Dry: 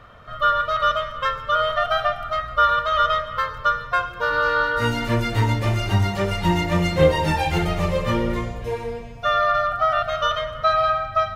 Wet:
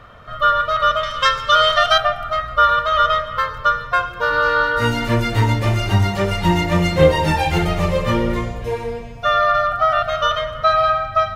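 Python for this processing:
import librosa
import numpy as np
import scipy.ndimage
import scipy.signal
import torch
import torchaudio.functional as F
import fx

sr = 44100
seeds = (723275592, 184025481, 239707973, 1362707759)

y = fx.peak_eq(x, sr, hz=5700.0, db=15.0, octaves=2.2, at=(1.03, 1.98))
y = y * 10.0 ** (3.5 / 20.0)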